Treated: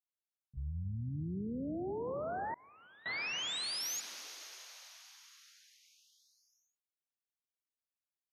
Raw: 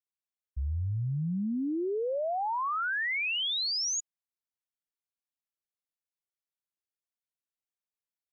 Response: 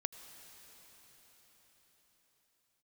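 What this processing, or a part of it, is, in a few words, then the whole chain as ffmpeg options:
shimmer-style reverb: -filter_complex "[0:a]asplit=2[a][b];[b]asetrate=88200,aresample=44100,atempo=0.5,volume=-10dB[c];[a][c]amix=inputs=2:normalize=0[d];[1:a]atrim=start_sample=2205[e];[d][e]afir=irnorm=-1:irlink=0,asettb=1/sr,asplit=3[f][g][h];[f]atrim=end=2.544[i];[g]atrim=start=2.54:end=3.06,asetpts=PTS-STARTPTS,afade=t=in:d=0.004:c=qsin,afade=t=out:st=0.516:d=0.004:c=qsin,agate=range=-33dB:threshold=-17dB:ratio=3:detection=peak[j];[h]atrim=start=3.056[k];[i][j]acrossfade=d=0.004:c1=hsin:c2=qsin[l];[l][k]acrossfade=d=0.004:c1=qsin:c2=hsin,volume=-7dB"

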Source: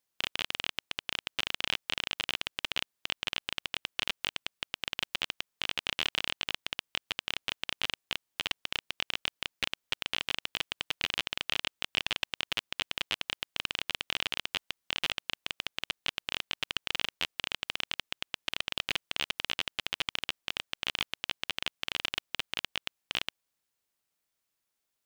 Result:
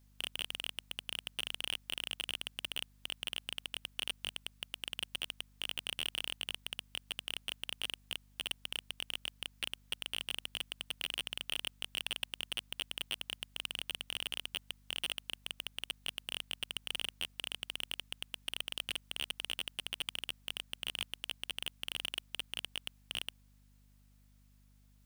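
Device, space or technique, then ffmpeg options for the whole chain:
valve amplifier with mains hum: -af "aeval=exprs='(tanh(44.7*val(0)+0.2)-tanh(0.2))/44.7':c=same,aeval=exprs='val(0)+0.000282*(sin(2*PI*50*n/s)+sin(2*PI*2*50*n/s)/2+sin(2*PI*3*50*n/s)/3+sin(2*PI*4*50*n/s)/4+sin(2*PI*5*50*n/s)/5)':c=same,volume=7.5dB"

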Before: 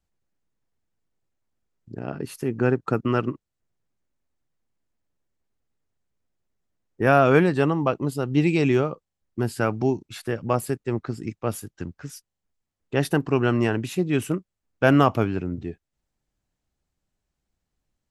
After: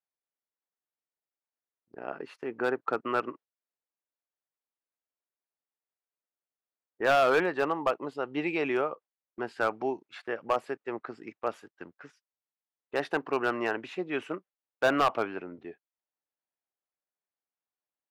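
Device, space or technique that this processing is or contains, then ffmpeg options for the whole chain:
walkie-talkie: -af "highpass=560,lowpass=2.3k,asoftclip=type=hard:threshold=-17.5dB,agate=range=-10dB:threshold=-50dB:ratio=16:detection=peak"

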